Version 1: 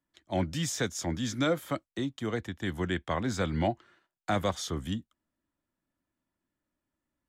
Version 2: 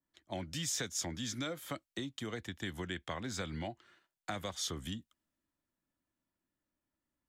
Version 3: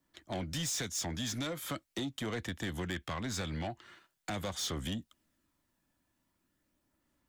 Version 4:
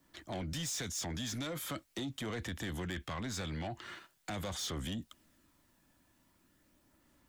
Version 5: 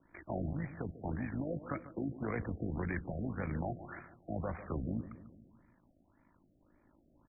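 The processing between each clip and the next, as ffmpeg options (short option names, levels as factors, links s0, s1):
-af "acompressor=threshold=0.0224:ratio=6,adynamicequalizer=threshold=0.00178:dfrequency=1800:dqfactor=0.7:tfrequency=1800:tqfactor=0.7:attack=5:release=100:ratio=0.375:range=3.5:mode=boostabove:tftype=highshelf,volume=0.631"
-filter_complex "[0:a]asplit=2[s0][s1];[s1]acompressor=threshold=0.00447:ratio=6,volume=1.12[s2];[s0][s2]amix=inputs=2:normalize=0,aphaser=in_gain=1:out_gain=1:delay=1.2:decay=0.21:speed=0.42:type=sinusoidal,asoftclip=type=tanh:threshold=0.02,volume=1.41"
-af "alimiter=level_in=8.41:limit=0.0631:level=0:latency=1:release=25,volume=0.119,volume=2.66"
-filter_complex "[0:a]tremolo=f=53:d=0.667,asplit=2[s0][s1];[s1]adelay=145,lowpass=f=1500:p=1,volume=0.224,asplit=2[s2][s3];[s3]adelay=145,lowpass=f=1500:p=1,volume=0.55,asplit=2[s4][s5];[s5]adelay=145,lowpass=f=1500:p=1,volume=0.55,asplit=2[s6][s7];[s7]adelay=145,lowpass=f=1500:p=1,volume=0.55,asplit=2[s8][s9];[s9]adelay=145,lowpass=f=1500:p=1,volume=0.55,asplit=2[s10][s11];[s11]adelay=145,lowpass=f=1500:p=1,volume=0.55[s12];[s0][s2][s4][s6][s8][s10][s12]amix=inputs=7:normalize=0,afftfilt=real='re*lt(b*sr/1024,720*pow(2500/720,0.5+0.5*sin(2*PI*1.8*pts/sr)))':imag='im*lt(b*sr/1024,720*pow(2500/720,0.5+0.5*sin(2*PI*1.8*pts/sr)))':win_size=1024:overlap=0.75,volume=1.88"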